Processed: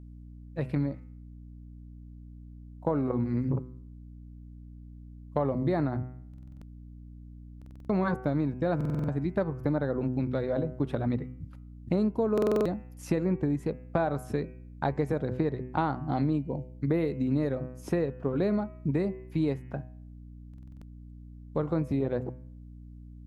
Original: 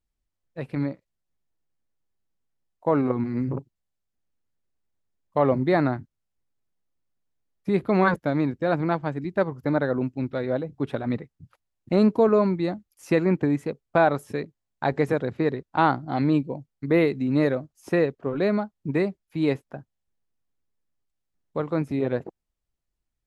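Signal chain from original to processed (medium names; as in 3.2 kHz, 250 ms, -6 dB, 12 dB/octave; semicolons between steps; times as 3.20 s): peaking EQ 70 Hz +9 dB 2.1 oct; de-hum 126.4 Hz, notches 24; dynamic bell 2.4 kHz, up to -6 dB, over -41 dBFS, Q 0.71; compression, threshold -24 dBFS, peak gain reduction 11 dB; hum 60 Hz, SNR 15 dB; buffer glitch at 6.29/7.57/8.76/12.33/20.49 s, samples 2048, times 6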